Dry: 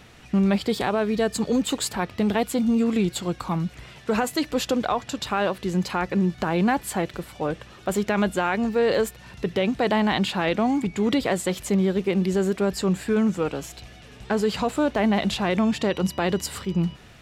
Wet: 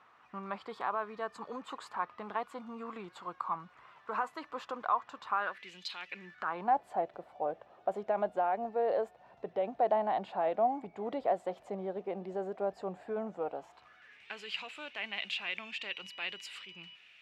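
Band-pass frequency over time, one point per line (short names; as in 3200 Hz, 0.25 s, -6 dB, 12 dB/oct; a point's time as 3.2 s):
band-pass, Q 4.1
5.36 s 1100 Hz
5.88 s 4000 Hz
6.77 s 700 Hz
13.55 s 700 Hz
14.31 s 2600 Hz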